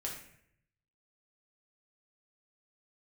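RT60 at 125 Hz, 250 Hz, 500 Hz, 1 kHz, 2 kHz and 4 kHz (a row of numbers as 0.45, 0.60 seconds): 1.1, 0.80, 0.75, 0.60, 0.75, 0.50 seconds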